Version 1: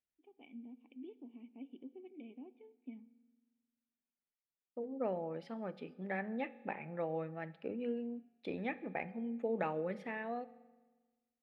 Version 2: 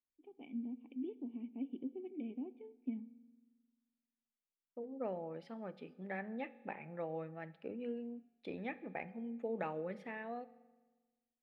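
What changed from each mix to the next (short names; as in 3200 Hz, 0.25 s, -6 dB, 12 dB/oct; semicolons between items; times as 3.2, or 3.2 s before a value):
first voice: add low shelf 440 Hz +11 dB; second voice -3.5 dB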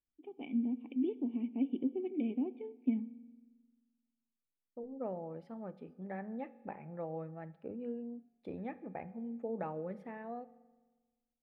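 first voice +8.5 dB; second voice: remove weighting filter D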